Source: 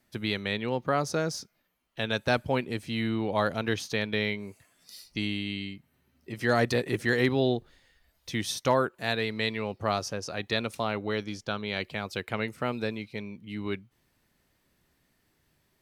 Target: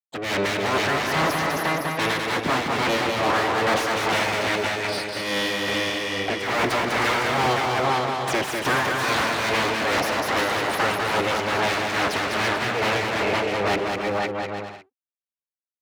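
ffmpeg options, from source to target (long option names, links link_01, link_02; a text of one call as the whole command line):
ffmpeg -i in.wav -filter_complex "[0:a]asplit=2[link_01][link_02];[link_02]aecho=0:1:510:0.398[link_03];[link_01][link_03]amix=inputs=2:normalize=0,afftfilt=real='re*gte(hypot(re,im),0.00891)':imag='im*gte(hypot(re,im),0.00891)':win_size=1024:overlap=0.75,aeval=exprs='abs(val(0))':channel_layout=same,asplit=2[link_04][link_05];[link_05]highpass=frequency=720:poles=1,volume=42dB,asoftclip=type=tanh:threshold=-10.5dB[link_06];[link_04][link_06]amix=inputs=2:normalize=0,lowpass=frequency=2000:poles=1,volume=-6dB,highpass=frequency=59:width=0.5412,highpass=frequency=59:width=1.3066,tremolo=f=2.4:d=0.59,asplit=2[link_07][link_08];[link_08]aecho=0:1:200|340|438|506.6|554.6:0.631|0.398|0.251|0.158|0.1[link_09];[link_07][link_09]amix=inputs=2:normalize=0,volume=-2.5dB" out.wav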